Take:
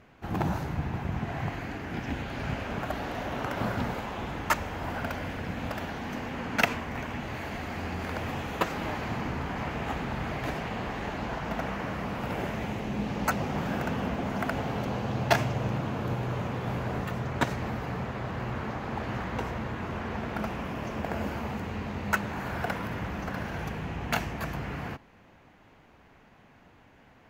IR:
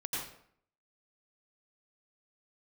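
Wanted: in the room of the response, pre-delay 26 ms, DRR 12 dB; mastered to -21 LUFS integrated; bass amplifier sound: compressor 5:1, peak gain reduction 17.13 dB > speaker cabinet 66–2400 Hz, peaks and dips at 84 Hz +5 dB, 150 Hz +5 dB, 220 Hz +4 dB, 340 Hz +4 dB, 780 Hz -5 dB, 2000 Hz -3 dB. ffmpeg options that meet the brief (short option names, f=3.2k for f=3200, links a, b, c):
-filter_complex "[0:a]asplit=2[a][b];[1:a]atrim=start_sample=2205,adelay=26[c];[b][c]afir=irnorm=-1:irlink=0,volume=-15dB[d];[a][d]amix=inputs=2:normalize=0,acompressor=threshold=-36dB:ratio=5,highpass=f=66:w=0.5412,highpass=f=66:w=1.3066,equalizer=f=84:t=q:w=4:g=5,equalizer=f=150:t=q:w=4:g=5,equalizer=f=220:t=q:w=4:g=4,equalizer=f=340:t=q:w=4:g=4,equalizer=f=780:t=q:w=4:g=-5,equalizer=f=2k:t=q:w=4:g=-3,lowpass=f=2.4k:w=0.5412,lowpass=f=2.4k:w=1.3066,volume=17dB"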